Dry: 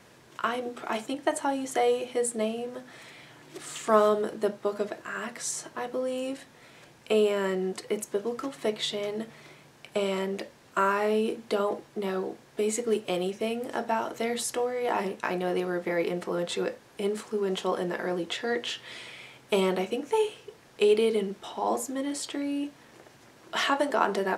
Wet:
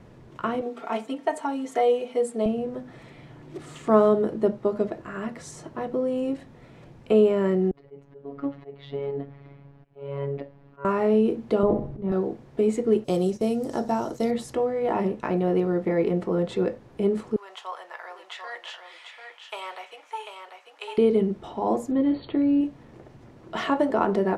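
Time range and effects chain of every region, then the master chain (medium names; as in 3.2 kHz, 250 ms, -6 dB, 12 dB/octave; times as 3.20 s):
0.61–2.46 s: high-pass 740 Hz 6 dB/octave + comb 4.4 ms, depth 91%
7.71–10.85 s: slow attack 290 ms + robot voice 140 Hz + distance through air 290 m
11.63–12.12 s: RIAA curve playback + slow attack 292 ms + flutter echo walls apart 10.9 m, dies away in 0.41 s
13.04–14.31 s: gate -44 dBFS, range -8 dB + resonant high shelf 3.8 kHz +12 dB, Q 1.5
17.36–20.98 s: high-pass 880 Hz 24 dB/octave + delay 743 ms -6.5 dB
21.91–22.61 s: brick-wall FIR low-pass 4.6 kHz + bass shelf 360 Hz +4.5 dB + tape noise reduction on one side only encoder only
whole clip: tilt EQ -4 dB/octave; band-stop 1.6 kHz, Q 19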